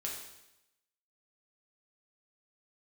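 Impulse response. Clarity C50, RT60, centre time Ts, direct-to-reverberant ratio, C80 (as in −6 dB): 3.5 dB, 0.90 s, 43 ms, −2.5 dB, 6.5 dB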